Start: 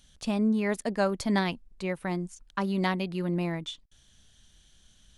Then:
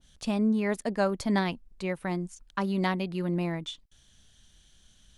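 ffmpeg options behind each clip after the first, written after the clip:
ffmpeg -i in.wav -af "adynamicequalizer=threshold=0.01:dfrequency=1800:dqfactor=0.7:tfrequency=1800:tqfactor=0.7:attack=5:release=100:ratio=0.375:range=1.5:mode=cutabove:tftype=highshelf" out.wav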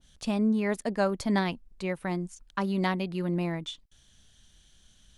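ffmpeg -i in.wav -af anull out.wav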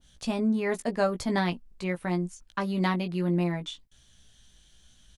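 ffmpeg -i in.wav -filter_complex "[0:a]asplit=2[link_01][link_02];[link_02]adelay=17,volume=-6dB[link_03];[link_01][link_03]amix=inputs=2:normalize=0" out.wav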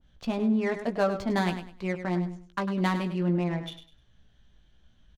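ffmpeg -i in.wav -filter_complex "[0:a]adynamicsmooth=sensitivity=5.5:basefreq=2100,asplit=2[link_01][link_02];[link_02]aecho=0:1:101|202|303:0.316|0.0822|0.0214[link_03];[link_01][link_03]amix=inputs=2:normalize=0" out.wav

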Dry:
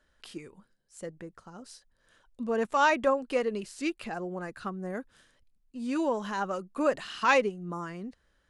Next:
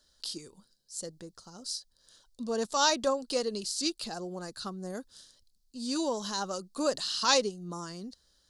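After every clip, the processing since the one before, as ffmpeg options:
ffmpeg -i in.wav -af "highshelf=frequency=3200:width_type=q:width=3:gain=12,volume=-2.5dB" out.wav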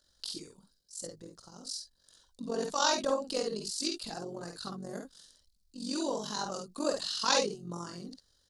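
ffmpeg -i in.wav -af "tremolo=f=46:d=0.824,aecho=1:1:52|63:0.562|0.224" out.wav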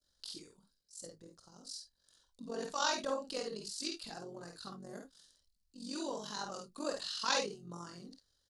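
ffmpeg -i in.wav -filter_complex "[0:a]adynamicequalizer=threshold=0.00562:dfrequency=2000:dqfactor=0.72:tfrequency=2000:tqfactor=0.72:attack=5:release=100:ratio=0.375:range=2.5:mode=boostabove:tftype=bell,asplit=2[link_01][link_02];[link_02]adelay=30,volume=-14dB[link_03];[link_01][link_03]amix=inputs=2:normalize=0,volume=-7.5dB" out.wav

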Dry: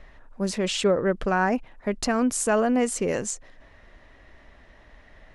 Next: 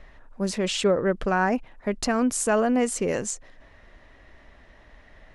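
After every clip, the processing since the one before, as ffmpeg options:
ffmpeg -i in.wav -af anull out.wav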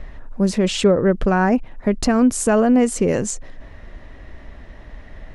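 ffmpeg -i in.wav -filter_complex "[0:a]lowshelf=frequency=410:gain=9.5,asplit=2[link_01][link_02];[link_02]acompressor=threshold=-27dB:ratio=6,volume=-0.5dB[link_03];[link_01][link_03]amix=inputs=2:normalize=0" out.wav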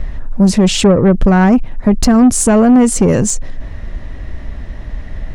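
ffmpeg -i in.wav -af "bass=frequency=250:gain=8,treble=frequency=4000:gain=4,acontrast=89,volume=-1dB" out.wav

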